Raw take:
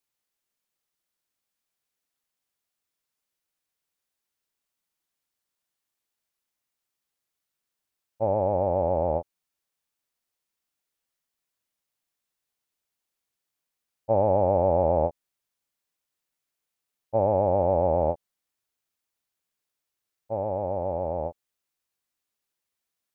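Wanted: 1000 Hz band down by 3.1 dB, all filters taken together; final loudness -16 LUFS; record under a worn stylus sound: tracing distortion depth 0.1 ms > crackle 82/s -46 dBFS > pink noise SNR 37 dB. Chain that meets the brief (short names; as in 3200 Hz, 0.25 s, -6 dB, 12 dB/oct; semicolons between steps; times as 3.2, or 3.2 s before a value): bell 1000 Hz -4.5 dB; tracing distortion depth 0.1 ms; crackle 82/s -46 dBFS; pink noise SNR 37 dB; gain +11 dB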